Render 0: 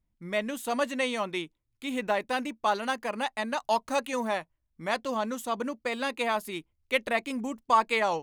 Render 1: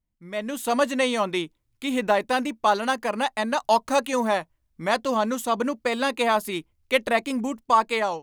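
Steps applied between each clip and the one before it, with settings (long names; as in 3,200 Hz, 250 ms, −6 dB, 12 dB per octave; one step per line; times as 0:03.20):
dynamic equaliser 2,300 Hz, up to −4 dB, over −40 dBFS, Q 1.8
automatic gain control gain up to 12 dB
level −4.5 dB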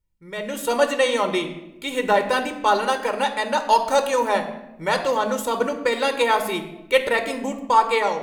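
convolution reverb RT60 0.95 s, pre-delay 7 ms, DRR 7 dB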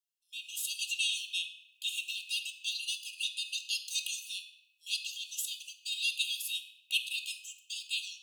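linear-phase brick-wall high-pass 2,500 Hz
level −2 dB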